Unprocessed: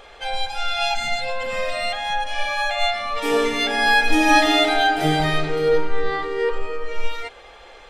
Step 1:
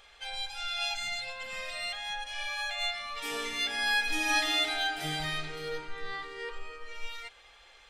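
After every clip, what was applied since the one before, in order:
guitar amp tone stack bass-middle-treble 5-5-5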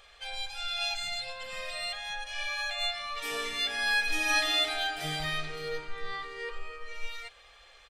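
comb filter 1.7 ms, depth 34%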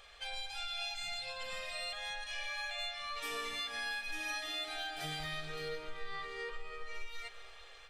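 downward compressor 5 to 1, threshold −37 dBFS, peak gain reduction 13.5 dB
comb and all-pass reverb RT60 3.6 s, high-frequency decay 0.95×, pre-delay 90 ms, DRR 10 dB
level −1 dB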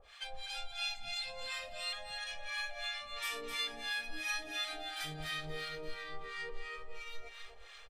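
two-band tremolo in antiphase 2.9 Hz, depth 100%, crossover 830 Hz
single-tap delay 258 ms −7 dB
level +3.5 dB

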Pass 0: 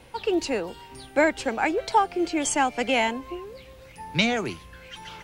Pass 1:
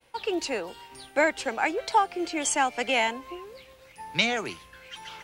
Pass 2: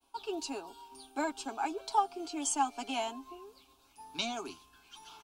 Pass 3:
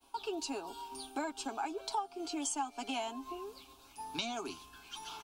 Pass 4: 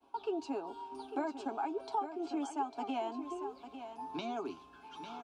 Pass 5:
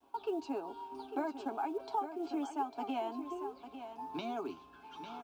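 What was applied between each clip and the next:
downward expander −44 dBFS; low-shelf EQ 330 Hz −11 dB
phaser with its sweep stopped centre 520 Hz, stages 6; comb filter 7.3 ms, depth 52%; level −6 dB
downward compressor 3 to 1, threshold −44 dBFS, peak gain reduction 16 dB; level +6.5 dB
resonant band-pass 420 Hz, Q 0.53; on a send: single-tap delay 850 ms −10 dB; on the sum: level +3 dB
high-frequency loss of the air 60 metres; log-companded quantiser 8 bits

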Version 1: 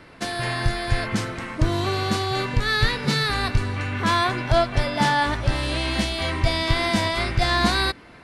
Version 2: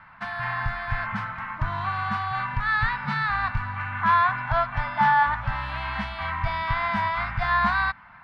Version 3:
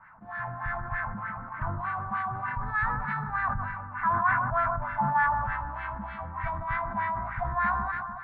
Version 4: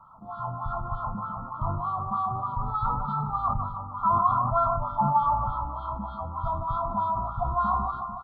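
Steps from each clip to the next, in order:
drawn EQ curve 200 Hz 0 dB, 390 Hz −26 dB, 890 Hz +11 dB, 1,500 Hz +10 dB, 5,000 Hz −13 dB, 7,200 Hz −23 dB; level −7 dB
auto-filter low-pass sine 3.3 Hz 370–1,900 Hz; delay that swaps between a low-pass and a high-pass 149 ms, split 1,200 Hz, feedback 70%, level −10 dB; level that may fall only so fast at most 34 dB per second; level −8.5 dB
linear-phase brick-wall band-stop 1,400–3,100 Hz; double-tracking delay 34 ms −12 dB; level +3 dB

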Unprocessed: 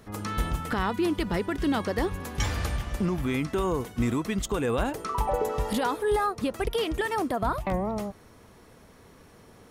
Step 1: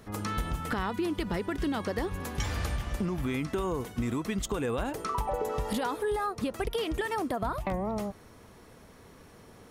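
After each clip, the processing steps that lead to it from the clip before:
downward compressor, threshold −27 dBFS, peak gain reduction 6.5 dB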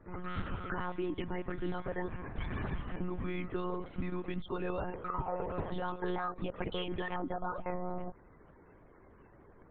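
spectral peaks only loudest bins 64
one-pitch LPC vocoder at 8 kHz 180 Hz
level −5 dB

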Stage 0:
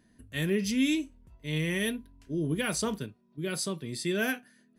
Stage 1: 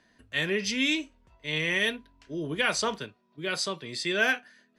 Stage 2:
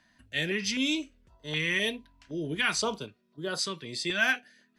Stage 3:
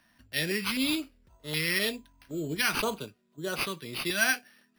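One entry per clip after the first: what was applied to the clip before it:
three-way crossover with the lows and the highs turned down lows −14 dB, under 500 Hz, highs −23 dB, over 6,600 Hz; level +7.5 dB
notch on a step sequencer 3.9 Hz 430–2,300 Hz
bad sample-rate conversion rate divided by 6×, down none, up hold

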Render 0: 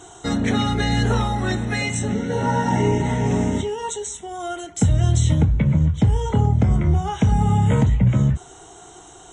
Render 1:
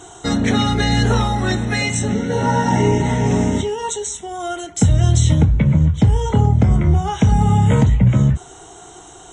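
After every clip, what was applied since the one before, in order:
dynamic equaliser 5,000 Hz, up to +4 dB, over −46 dBFS, Q 1.8
level +3.5 dB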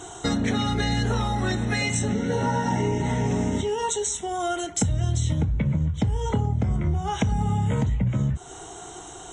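downward compressor 4 to 1, threshold −22 dBFS, peak gain reduction 11.5 dB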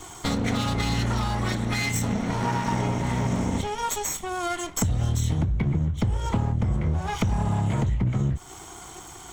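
lower of the sound and its delayed copy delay 0.9 ms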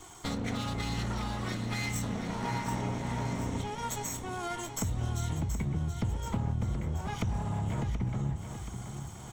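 repeating echo 728 ms, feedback 53%, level −9 dB
level −8.5 dB

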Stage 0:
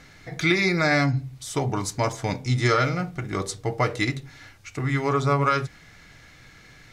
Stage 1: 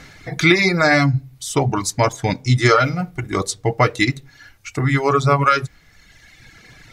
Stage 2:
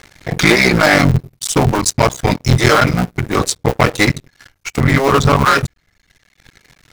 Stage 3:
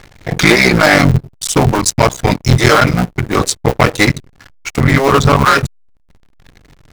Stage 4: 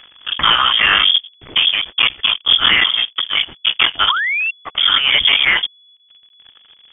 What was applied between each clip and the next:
reverb reduction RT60 1.5 s; level +8 dB
sub-harmonics by changed cycles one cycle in 3, muted; leveller curve on the samples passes 3; level −2 dB
slack as between gear wheels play −37.5 dBFS; level +2 dB
sound drawn into the spectrogram fall, 0:04.09–0:04.51, 640–2,500 Hz −14 dBFS; voice inversion scrambler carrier 3,400 Hz; level −4 dB

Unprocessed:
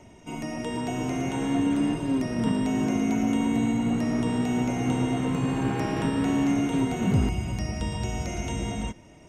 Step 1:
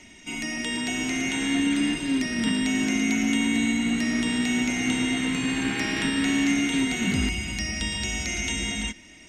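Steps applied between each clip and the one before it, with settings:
octave-band graphic EQ 125/250/500/1,000/2,000/4,000/8,000 Hz −11/+5/−8/−6/+11/+10/+8 dB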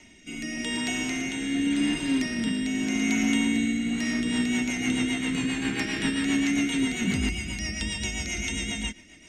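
rotating-speaker cabinet horn 0.85 Hz, later 7.5 Hz, at 0:03.82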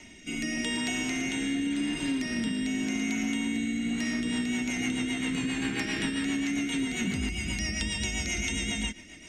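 downward compressor, threshold −30 dBFS, peak gain reduction 10 dB
level +3 dB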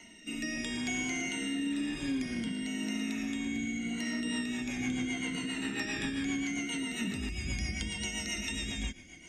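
rippled gain that drifts along the octave scale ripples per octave 1.9, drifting −0.74 Hz, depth 13 dB
level −6 dB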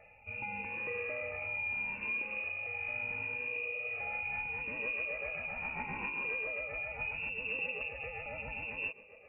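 voice inversion scrambler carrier 2,700 Hz
level −3.5 dB

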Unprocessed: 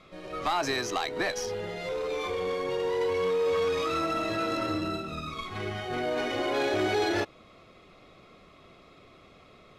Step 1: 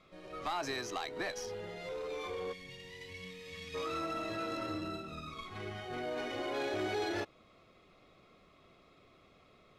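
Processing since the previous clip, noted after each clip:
gain on a spectral selection 0:02.53–0:03.75, 260–1,700 Hz −18 dB
level −8.5 dB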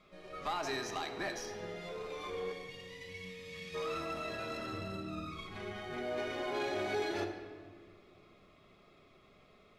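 rectangular room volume 2,600 cubic metres, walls mixed, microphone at 1.3 metres
level −1.5 dB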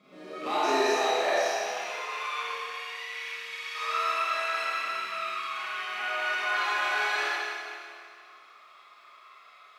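loose part that buzzes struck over −51 dBFS, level −36 dBFS
four-comb reverb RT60 2 s, combs from 26 ms, DRR −9 dB
high-pass filter sweep 220 Hz → 1,200 Hz, 0:00.02–0:02.35

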